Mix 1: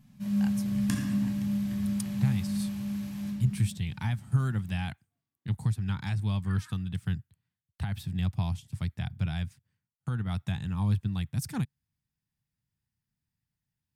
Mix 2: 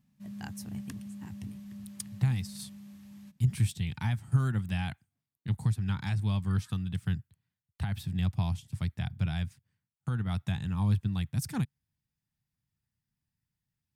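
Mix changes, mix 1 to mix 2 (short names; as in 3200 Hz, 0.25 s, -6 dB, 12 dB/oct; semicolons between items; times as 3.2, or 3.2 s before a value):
first sound -6.0 dB; second sound -8.5 dB; reverb: off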